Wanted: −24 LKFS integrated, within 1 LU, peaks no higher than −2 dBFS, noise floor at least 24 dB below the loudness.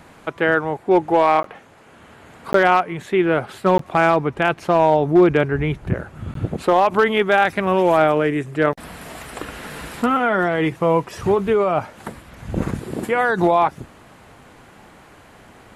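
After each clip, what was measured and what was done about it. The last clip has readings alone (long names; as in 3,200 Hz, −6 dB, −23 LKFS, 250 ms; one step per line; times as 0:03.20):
share of clipped samples 0.6%; peaks flattened at −6.5 dBFS; number of dropouts 4; longest dropout 13 ms; integrated loudness −18.5 LKFS; sample peak −6.5 dBFS; target loudness −24.0 LKFS
→ clipped peaks rebuilt −6.5 dBFS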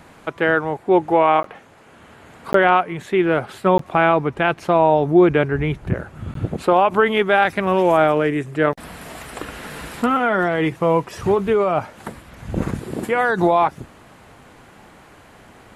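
share of clipped samples 0.0%; number of dropouts 4; longest dropout 13 ms
→ repair the gap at 0:01.43/0:02.53/0:03.78/0:06.34, 13 ms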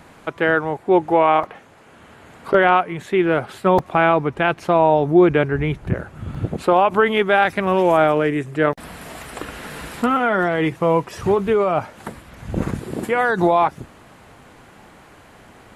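number of dropouts 0; integrated loudness −18.5 LKFS; sample peak −3.5 dBFS; target loudness −24.0 LKFS
→ level −5.5 dB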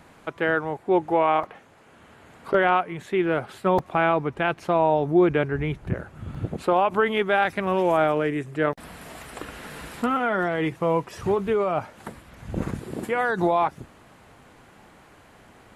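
integrated loudness −24.0 LKFS; sample peak −9.0 dBFS; background noise floor −53 dBFS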